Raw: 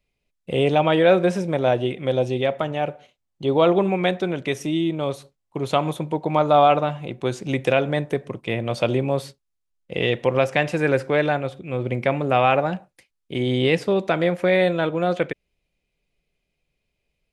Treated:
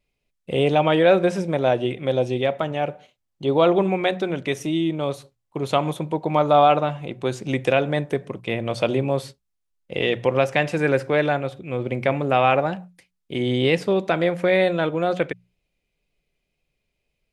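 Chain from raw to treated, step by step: notches 60/120/180 Hz; wow and flutter 25 cents

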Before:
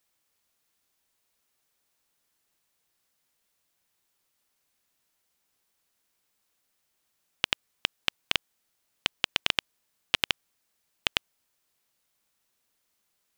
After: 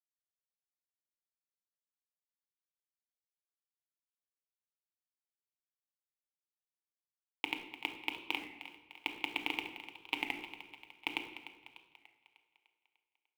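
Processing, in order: LPF 3000 Hz 12 dB/oct; bell 1300 Hz -11.5 dB 1.4 oct; notches 60/120/180/240/300/360/420/480/540 Hz; harmonic-percussive split harmonic +9 dB; resonant low shelf 330 Hz -12 dB, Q 1.5; compressor 12:1, threshold -27 dBFS, peak gain reduction 5 dB; vowel filter u; companded quantiser 6-bit; split-band echo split 470 Hz, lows 0.102 s, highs 0.298 s, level -13 dB; on a send at -6 dB: reverb RT60 1.2 s, pre-delay 7 ms; on the sum: record warp 33 1/3 rpm, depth 100 cents; gain +14.5 dB

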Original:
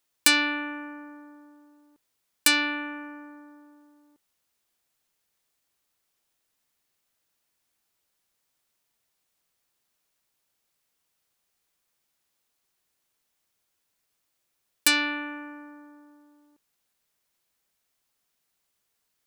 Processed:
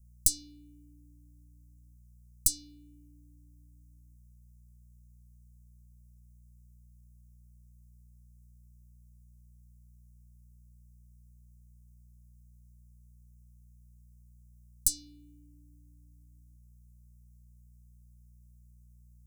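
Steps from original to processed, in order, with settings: tracing distortion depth 0.027 ms; buzz 60 Hz, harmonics 5, -57 dBFS -7 dB/oct; inverse Chebyshev band-stop 580–2000 Hz, stop band 70 dB

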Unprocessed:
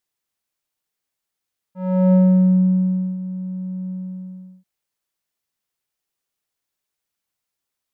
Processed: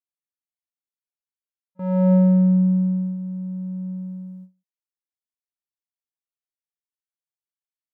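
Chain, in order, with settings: gate with hold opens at -28 dBFS; gain -1.5 dB

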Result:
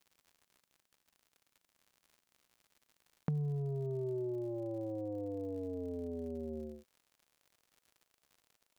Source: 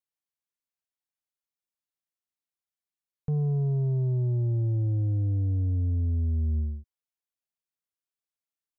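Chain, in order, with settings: high-pass sweep 170 Hz -> 510 Hz, 3.32–4.62; compressor 6:1, threshold -45 dBFS, peak gain reduction 22 dB; crackle 100/s -61 dBFS; gain +9 dB

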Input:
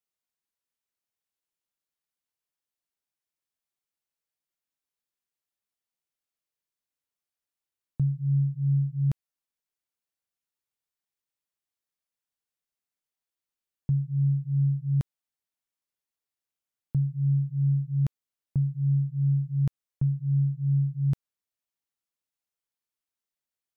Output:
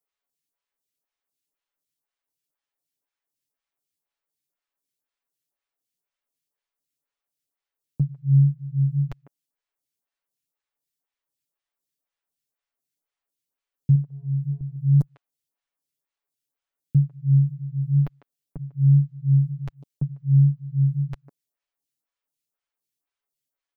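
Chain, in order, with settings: comb 7.1 ms, depth 65%; 13.95–14.61 compressor, threshold -23 dBFS, peak gain reduction 6.5 dB; speakerphone echo 0.15 s, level -13 dB; photocell phaser 2 Hz; gain +4.5 dB

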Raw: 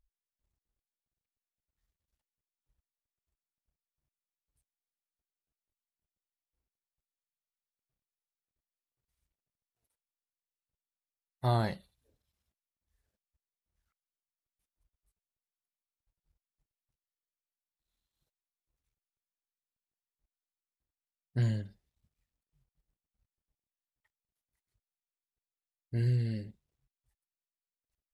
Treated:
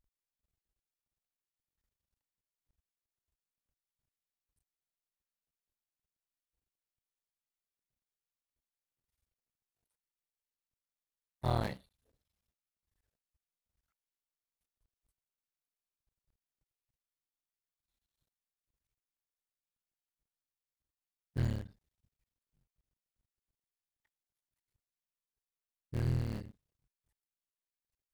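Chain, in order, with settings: cycle switcher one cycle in 3, muted; gain -2 dB

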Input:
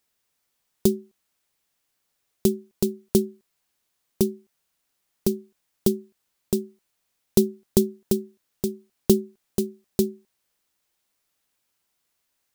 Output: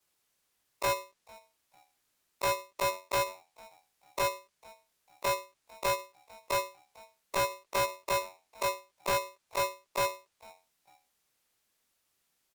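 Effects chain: short-time reversal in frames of 56 ms; wavefolder -15 dBFS; formant shift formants -2 st; hard clip -28.5 dBFS, distortion -6 dB; treble ducked by the level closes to 2100 Hz, closed at -30 dBFS; frequency-shifting echo 0.448 s, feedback 30%, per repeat -91 Hz, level -24 dB; polarity switched at an audio rate 780 Hz; gain +3 dB

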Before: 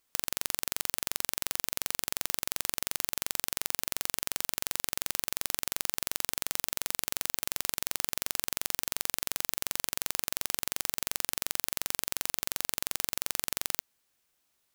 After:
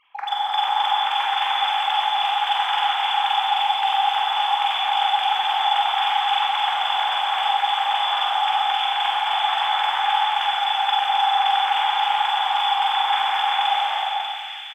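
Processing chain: sine-wave speech; in parallel at -11.5 dB: hard clip -36 dBFS, distortion -6 dB; on the sum: doubler 46 ms -4 dB; on a send: split-band echo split 1700 Hz, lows 0.134 s, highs 0.592 s, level -5 dB; on the sum: non-linear reverb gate 0.49 s flat, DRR -6 dB; gain +2.5 dB

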